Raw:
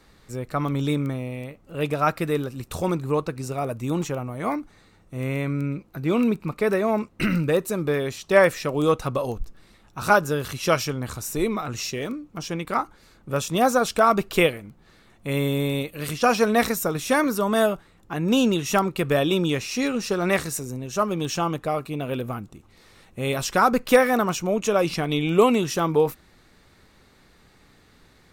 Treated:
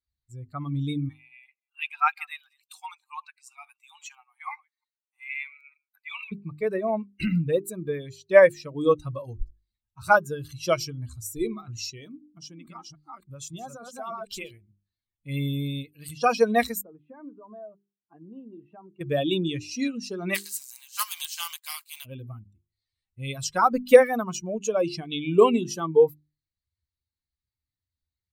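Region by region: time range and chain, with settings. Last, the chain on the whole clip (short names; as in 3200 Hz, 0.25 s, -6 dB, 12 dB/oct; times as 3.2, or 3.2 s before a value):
1.09–6.32 reverse delay 0.15 s, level -14 dB + dynamic EQ 2400 Hz, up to +7 dB, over -48 dBFS, Q 1.3 + brick-wall FIR high-pass 720 Hz
12.08–14.51 reverse delay 0.291 s, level -1 dB + compressor 2.5:1, threshold -27 dBFS
16.81–19.01 compressor, threshold -23 dBFS + band-pass 560 Hz, Q 0.65 + air absorption 350 m
20.34–22.04 spectral contrast lowered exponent 0.42 + HPF 820 Hz 24 dB/oct
whole clip: per-bin expansion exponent 2; notches 50/100/150/200/250/300/350/400 Hz; dynamic EQ 510 Hz, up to +5 dB, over -38 dBFS, Q 2.8; gain +1.5 dB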